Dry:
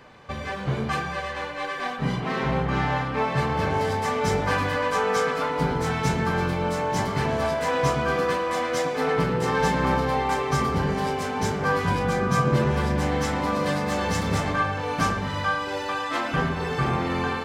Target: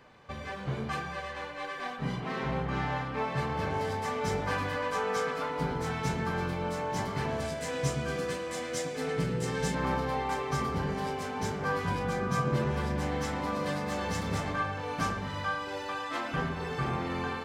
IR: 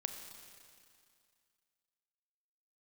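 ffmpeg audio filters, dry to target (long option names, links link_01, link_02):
-filter_complex "[0:a]asettb=1/sr,asplit=3[link_01][link_02][link_03];[link_01]atrim=end=7.404[link_04];[link_02]atrim=start=7.4:end=9.75,asetpts=PTS-STARTPTS,afade=type=in:duration=0.004:curve=qsin,afade=type=out:start_time=2.346:duration=0.004:curve=qsin,equalizer=frequency=125:width_type=o:width=1:gain=4,equalizer=frequency=1000:width_type=o:width=1:gain=-9,equalizer=frequency=8000:width_type=o:width=1:gain=8[link_05];[link_03]atrim=start=9.746[link_06];[link_04][link_05]acrossfade=duration=0.004:curve1=hsin:curve2=qsin[link_07];[link_07][link_06]acrossfade=duration=0.004:curve1=qsin:curve2=hsin,volume=-7.5dB"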